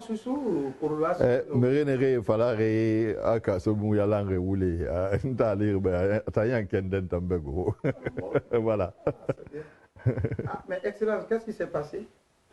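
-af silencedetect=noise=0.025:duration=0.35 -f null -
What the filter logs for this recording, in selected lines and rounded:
silence_start: 9.61
silence_end: 10.06 | silence_duration: 0.45
silence_start: 12.01
silence_end: 12.52 | silence_duration: 0.51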